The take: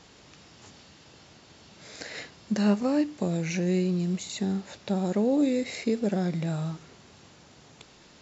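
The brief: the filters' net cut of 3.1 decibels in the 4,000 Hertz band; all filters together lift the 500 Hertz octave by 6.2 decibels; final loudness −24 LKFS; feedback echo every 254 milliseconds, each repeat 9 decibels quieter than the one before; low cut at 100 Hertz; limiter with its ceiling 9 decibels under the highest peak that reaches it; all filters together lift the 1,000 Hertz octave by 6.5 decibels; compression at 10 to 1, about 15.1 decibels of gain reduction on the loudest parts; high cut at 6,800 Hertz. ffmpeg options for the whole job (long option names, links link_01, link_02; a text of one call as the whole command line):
ffmpeg -i in.wav -af "highpass=100,lowpass=6800,equalizer=frequency=500:width_type=o:gain=6,equalizer=frequency=1000:width_type=o:gain=6.5,equalizer=frequency=4000:width_type=o:gain=-3.5,acompressor=threshold=-32dB:ratio=10,alimiter=level_in=5.5dB:limit=-24dB:level=0:latency=1,volume=-5.5dB,aecho=1:1:254|508|762|1016:0.355|0.124|0.0435|0.0152,volume=14.5dB" out.wav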